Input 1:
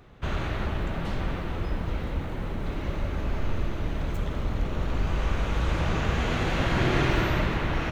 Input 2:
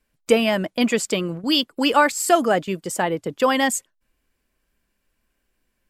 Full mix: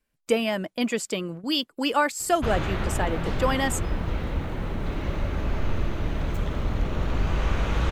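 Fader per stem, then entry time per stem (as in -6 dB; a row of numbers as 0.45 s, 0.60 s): +2.0 dB, -6.0 dB; 2.20 s, 0.00 s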